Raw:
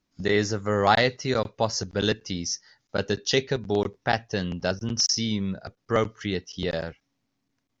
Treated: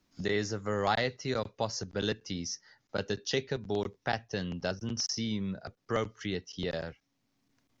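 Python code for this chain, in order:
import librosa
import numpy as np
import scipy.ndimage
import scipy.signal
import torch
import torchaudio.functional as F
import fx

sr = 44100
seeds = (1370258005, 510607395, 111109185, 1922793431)

y = fx.band_squash(x, sr, depth_pct=40)
y = F.gain(torch.from_numpy(y), -7.5).numpy()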